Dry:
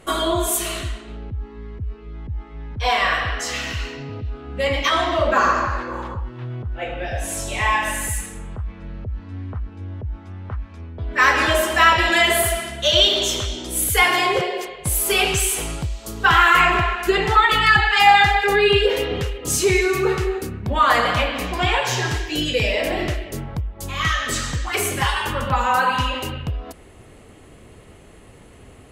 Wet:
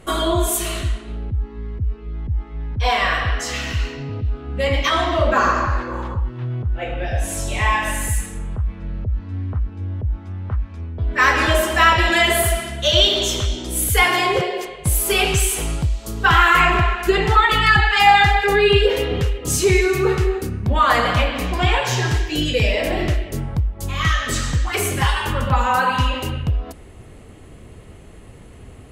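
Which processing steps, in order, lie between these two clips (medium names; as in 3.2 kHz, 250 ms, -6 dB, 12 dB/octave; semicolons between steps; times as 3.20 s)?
bass shelf 210 Hz +7 dB; de-hum 285.1 Hz, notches 35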